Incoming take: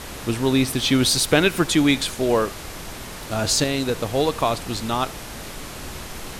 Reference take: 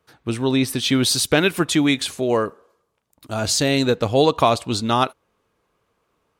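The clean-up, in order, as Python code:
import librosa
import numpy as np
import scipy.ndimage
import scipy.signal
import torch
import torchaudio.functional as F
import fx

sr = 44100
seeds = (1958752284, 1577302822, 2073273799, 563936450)

y = fx.noise_reduce(x, sr, print_start_s=2.71, print_end_s=3.21, reduce_db=30.0)
y = fx.fix_echo_inverse(y, sr, delay_ms=77, level_db=-23.0)
y = fx.fix_level(y, sr, at_s=3.64, step_db=5.0)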